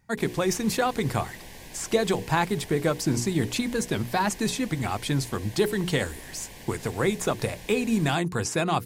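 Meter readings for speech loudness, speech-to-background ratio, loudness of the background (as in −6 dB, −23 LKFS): −27.0 LKFS, 17.0 dB, −44.0 LKFS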